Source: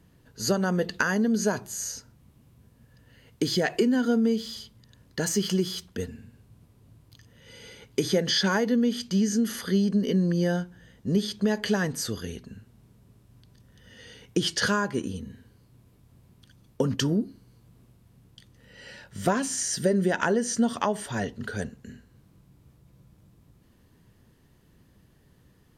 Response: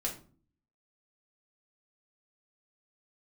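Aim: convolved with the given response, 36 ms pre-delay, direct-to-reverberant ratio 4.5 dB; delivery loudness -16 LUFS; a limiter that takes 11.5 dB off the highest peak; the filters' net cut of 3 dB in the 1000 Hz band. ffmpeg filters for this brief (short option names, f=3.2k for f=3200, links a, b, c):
-filter_complex "[0:a]equalizer=f=1k:t=o:g=-4,alimiter=limit=-22.5dB:level=0:latency=1,asplit=2[a][b];[1:a]atrim=start_sample=2205,adelay=36[c];[b][c]afir=irnorm=-1:irlink=0,volume=-7dB[d];[a][d]amix=inputs=2:normalize=0,volume=14dB"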